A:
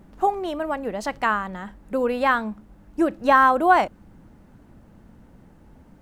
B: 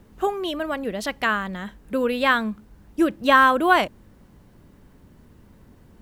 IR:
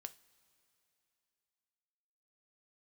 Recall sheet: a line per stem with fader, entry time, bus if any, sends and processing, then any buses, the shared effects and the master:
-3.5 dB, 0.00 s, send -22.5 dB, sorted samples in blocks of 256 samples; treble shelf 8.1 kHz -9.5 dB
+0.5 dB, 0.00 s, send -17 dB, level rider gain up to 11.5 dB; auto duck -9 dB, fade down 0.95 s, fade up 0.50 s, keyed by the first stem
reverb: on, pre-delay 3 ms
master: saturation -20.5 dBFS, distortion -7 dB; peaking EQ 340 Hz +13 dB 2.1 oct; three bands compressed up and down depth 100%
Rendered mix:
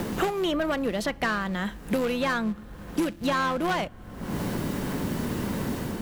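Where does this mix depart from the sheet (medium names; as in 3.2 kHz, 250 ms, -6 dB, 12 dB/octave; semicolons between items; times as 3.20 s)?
stem A -3.5 dB -> -15.0 dB; master: missing peaking EQ 340 Hz +13 dB 2.1 oct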